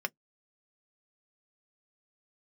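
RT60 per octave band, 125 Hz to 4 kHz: 0.15, 0.10, 0.10, 0.10, 0.05, 0.10 s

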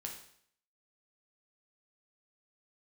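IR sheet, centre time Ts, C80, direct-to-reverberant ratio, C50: 26 ms, 9.5 dB, 0.5 dB, 6.0 dB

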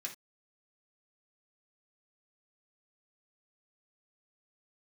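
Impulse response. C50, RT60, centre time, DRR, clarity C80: 10.5 dB, not exponential, 14 ms, -1.5 dB, 19.0 dB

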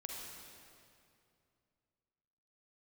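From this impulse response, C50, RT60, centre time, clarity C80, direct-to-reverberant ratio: -0.5 dB, 2.5 s, 0.122 s, 1.0 dB, -1.5 dB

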